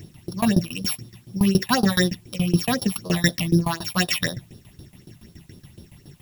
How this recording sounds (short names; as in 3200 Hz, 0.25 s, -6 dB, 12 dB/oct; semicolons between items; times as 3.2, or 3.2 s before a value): a buzz of ramps at a fixed pitch in blocks of 8 samples; tremolo saw down 7.1 Hz, depth 95%; phasing stages 6, 4 Hz, lowest notch 370–2200 Hz; a quantiser's noise floor 12-bit, dither triangular